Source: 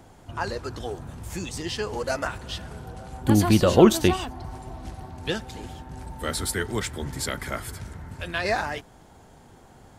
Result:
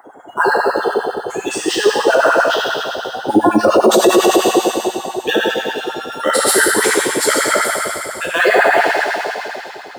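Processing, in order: 5.73–6.17 s: sorted samples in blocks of 32 samples; on a send: feedback echo behind a high-pass 133 ms, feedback 79%, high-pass 3.6 kHz, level -6.5 dB; on the sum: spectral gate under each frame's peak -20 dB strong; treble shelf 9.1 kHz +9 dB; plate-style reverb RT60 2.6 s, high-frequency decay 0.95×, DRR -5.5 dB; in parallel at -11 dB: sample-rate reducer 9.3 kHz, jitter 0%; on the sum: LFO high-pass sine 10 Hz 340–1600 Hz; loudness maximiser +7.5 dB; trim -1 dB

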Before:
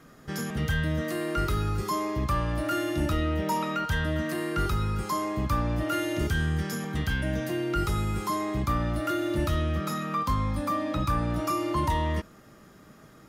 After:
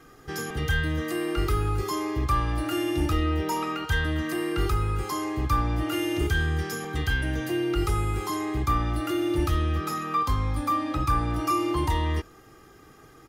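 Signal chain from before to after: comb 2.5 ms, depth 68%

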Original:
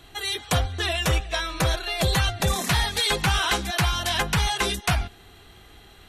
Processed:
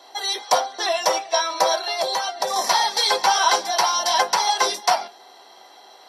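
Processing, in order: high-pass 510 Hz 24 dB/octave; 1.99–2.56 s: compression, threshold -27 dBFS, peak gain reduction 6 dB; reverberation RT60 0.15 s, pre-delay 3 ms, DRR 5.5 dB; trim -2 dB

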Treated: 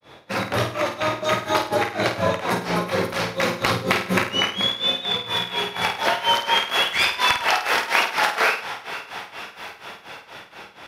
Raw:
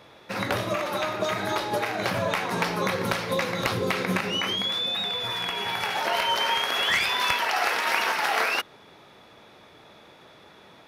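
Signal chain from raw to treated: on a send: echo that smears into a reverb 472 ms, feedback 71%, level -15 dB; on the sum: granulator 244 ms, grains 4.2 per s, spray 14 ms, pitch spread up and down by 0 st; flutter echo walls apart 8.8 m, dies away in 0.41 s; trim +7 dB

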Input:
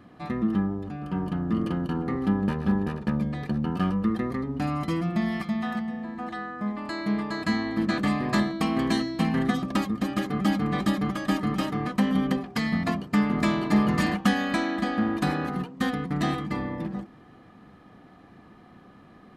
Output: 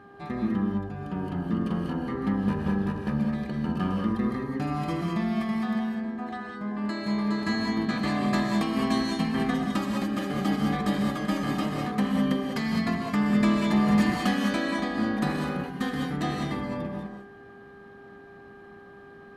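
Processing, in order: mains buzz 400 Hz, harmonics 4, -49 dBFS -1 dB/octave; gated-style reverb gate 230 ms rising, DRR 0.5 dB; trim -3.5 dB

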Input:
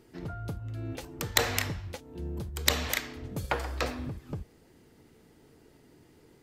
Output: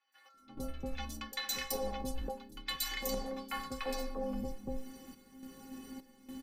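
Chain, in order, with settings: high-pass 78 Hz 12 dB/octave; band-stop 600 Hz, Q 16; three bands offset in time mids, highs, lows 120/340 ms, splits 900/4200 Hz; frequency shift -42 Hz; inharmonic resonator 260 Hz, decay 0.31 s, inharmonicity 0.008; level rider gain up to 14 dB; in parallel at -9.5 dB: one-sided clip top -30.5 dBFS; on the sum: random-step tremolo, depth 80%; reverse; compression 12:1, threshold -45 dBFS, peak gain reduction 24 dB; reverse; comb 5.3 ms, depth 48%; trim +10.5 dB

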